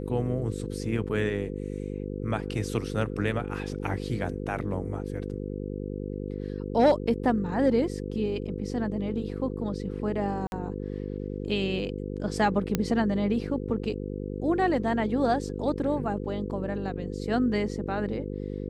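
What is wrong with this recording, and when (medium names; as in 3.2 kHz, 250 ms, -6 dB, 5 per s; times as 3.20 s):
buzz 50 Hz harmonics 10 -34 dBFS
5.17 s: dropout 2.8 ms
10.47–10.52 s: dropout 51 ms
12.75 s: pop -10 dBFS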